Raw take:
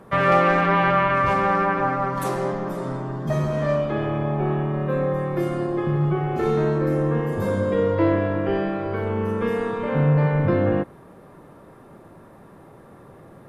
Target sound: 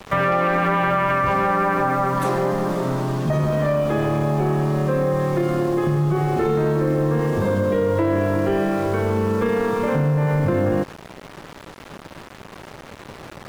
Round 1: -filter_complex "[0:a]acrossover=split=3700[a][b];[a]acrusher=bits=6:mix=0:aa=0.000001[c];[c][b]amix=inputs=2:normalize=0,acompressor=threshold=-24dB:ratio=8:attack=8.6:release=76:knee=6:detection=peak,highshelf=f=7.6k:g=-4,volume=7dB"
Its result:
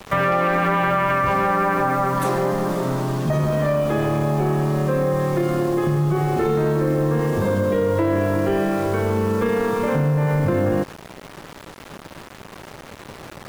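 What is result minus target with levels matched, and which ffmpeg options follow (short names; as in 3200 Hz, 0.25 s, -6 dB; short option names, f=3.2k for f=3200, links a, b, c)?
8000 Hz band +3.0 dB
-filter_complex "[0:a]acrossover=split=3700[a][b];[a]acrusher=bits=6:mix=0:aa=0.000001[c];[c][b]amix=inputs=2:normalize=0,acompressor=threshold=-24dB:ratio=8:attack=8.6:release=76:knee=6:detection=peak,highshelf=f=7.6k:g=-10,volume=7dB"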